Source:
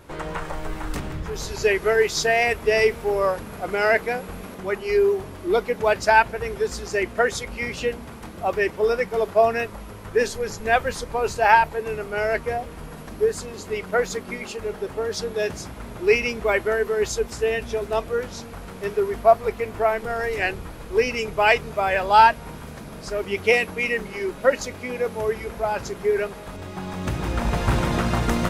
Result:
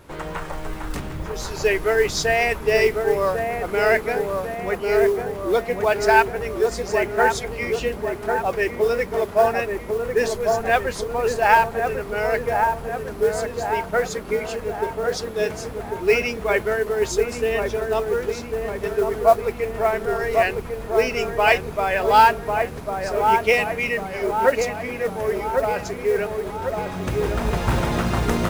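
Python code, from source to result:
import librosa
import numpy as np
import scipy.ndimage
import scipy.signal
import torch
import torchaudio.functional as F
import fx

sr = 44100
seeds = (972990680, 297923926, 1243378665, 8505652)

y = fx.echo_wet_lowpass(x, sr, ms=1098, feedback_pct=54, hz=1400.0, wet_db=-4)
y = fx.mod_noise(y, sr, seeds[0], snr_db=27)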